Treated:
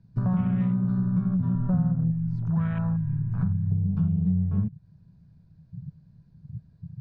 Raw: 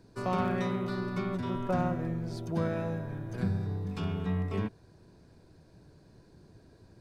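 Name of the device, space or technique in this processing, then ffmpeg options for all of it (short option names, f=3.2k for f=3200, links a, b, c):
jukebox: -filter_complex "[0:a]asettb=1/sr,asplit=3[a][b][c];[a]atrim=end=2.114[d];[b]atrim=start=2.11:end=3.72,asetpts=PTS-STARTPTS,afade=t=in:d=0.004:c=qsin,afade=t=out:st=1.606:d=0.004:c=qsin,equalizer=f=125:t=o:w=1:g=-7,equalizer=f=250:t=o:w=1:g=-8,equalizer=f=500:t=o:w=1:g=-8,equalizer=f=1k:t=o:w=1:g=7,equalizer=f=2k:t=o:w=1:g=6,equalizer=f=4k:t=o:w=1:g=-5[e];[c]atrim=start=3.716[f];[d][e]acrossfade=d=0.004:c1=hsin:c2=qsin[g];[g][f]acrossfade=d=0.004:c1=qsin:c2=hsin,afwtdn=0.0126,lowpass=5.1k,lowshelf=f=240:t=q:w=3:g=13.5,acompressor=threshold=-27dB:ratio=4,volume=3.5dB"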